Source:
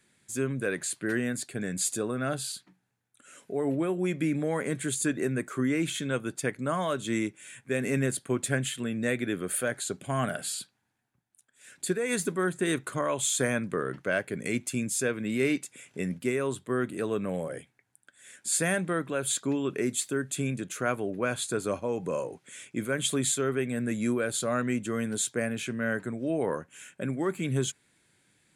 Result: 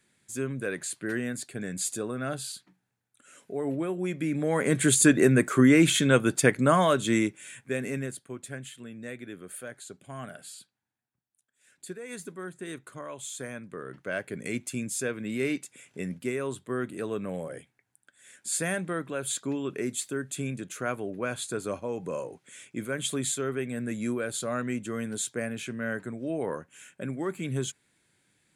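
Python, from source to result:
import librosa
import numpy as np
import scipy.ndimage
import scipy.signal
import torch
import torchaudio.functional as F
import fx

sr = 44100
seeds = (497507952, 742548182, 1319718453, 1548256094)

y = fx.gain(x, sr, db=fx.line((4.25, -2.0), (4.85, 9.0), (6.61, 9.0), (7.61, 1.0), (8.31, -11.0), (13.66, -11.0), (14.27, -2.5)))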